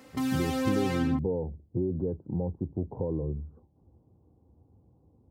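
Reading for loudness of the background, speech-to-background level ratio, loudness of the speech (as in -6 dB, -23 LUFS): -31.0 LUFS, -1.5 dB, -32.5 LUFS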